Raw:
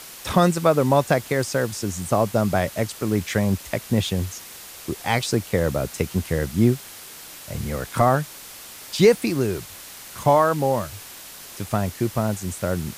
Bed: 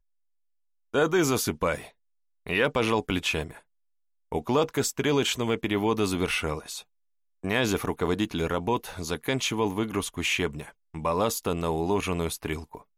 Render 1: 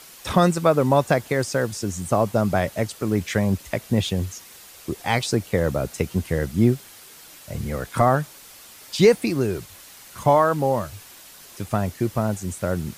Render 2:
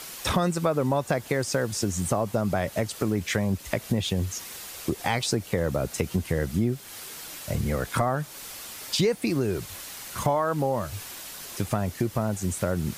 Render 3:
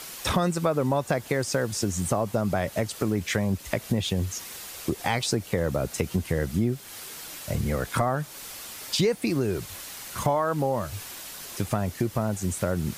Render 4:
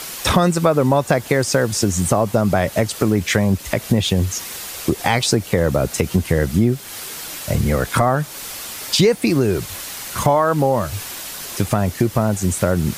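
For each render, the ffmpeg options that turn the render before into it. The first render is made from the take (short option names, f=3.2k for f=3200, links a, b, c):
-af "afftdn=nr=6:nf=-41"
-filter_complex "[0:a]asplit=2[a][b];[b]alimiter=limit=-14.5dB:level=0:latency=1:release=62,volume=-1.5dB[c];[a][c]amix=inputs=2:normalize=0,acompressor=threshold=-24dB:ratio=3"
-af anull
-af "volume=9dB,alimiter=limit=-2dB:level=0:latency=1"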